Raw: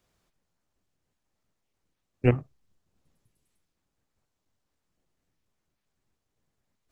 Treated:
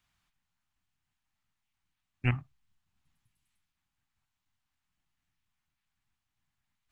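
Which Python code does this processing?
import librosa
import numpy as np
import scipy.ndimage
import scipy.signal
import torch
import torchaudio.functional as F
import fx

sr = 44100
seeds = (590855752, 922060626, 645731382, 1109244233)

y = fx.curve_eq(x, sr, hz=(130.0, 280.0, 490.0, 800.0, 1600.0, 2900.0, 5300.0), db=(0, -6, -19, 0, 4, 6, 0))
y = F.gain(torch.from_numpy(y), -4.5).numpy()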